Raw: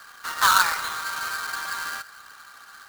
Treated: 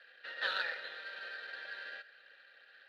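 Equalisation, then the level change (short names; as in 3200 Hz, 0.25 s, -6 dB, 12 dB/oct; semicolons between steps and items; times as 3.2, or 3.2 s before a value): dynamic EQ 2500 Hz, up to -5 dB, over -40 dBFS, Q 2.2; vowel filter e; resonant high shelf 5300 Hz -11 dB, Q 3; +1.0 dB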